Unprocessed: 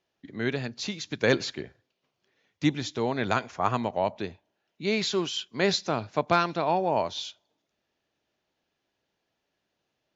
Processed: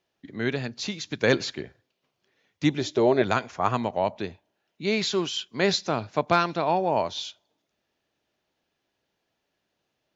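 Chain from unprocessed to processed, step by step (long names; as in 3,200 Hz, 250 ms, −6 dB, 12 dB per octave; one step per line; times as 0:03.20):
0:02.78–0:03.22: hollow resonant body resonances 390/600 Hz, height 13 dB
level +1.5 dB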